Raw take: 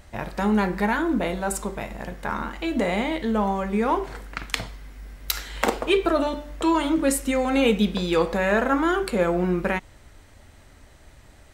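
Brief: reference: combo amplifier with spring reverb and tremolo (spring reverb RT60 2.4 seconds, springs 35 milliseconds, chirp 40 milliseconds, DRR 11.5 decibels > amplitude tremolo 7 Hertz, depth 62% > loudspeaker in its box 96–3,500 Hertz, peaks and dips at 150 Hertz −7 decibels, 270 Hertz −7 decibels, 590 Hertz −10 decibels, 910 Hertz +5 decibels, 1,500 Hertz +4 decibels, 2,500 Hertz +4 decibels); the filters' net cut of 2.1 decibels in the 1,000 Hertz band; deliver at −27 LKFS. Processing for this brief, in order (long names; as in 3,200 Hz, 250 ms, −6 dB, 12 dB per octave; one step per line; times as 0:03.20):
parametric band 1,000 Hz −5.5 dB
spring reverb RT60 2.4 s, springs 35 ms, chirp 40 ms, DRR 11.5 dB
amplitude tremolo 7 Hz, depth 62%
loudspeaker in its box 96–3,500 Hz, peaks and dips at 150 Hz −7 dB, 270 Hz −7 dB, 590 Hz −10 dB, 910 Hz +5 dB, 1,500 Hz +4 dB, 2,500 Hz +4 dB
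level +2.5 dB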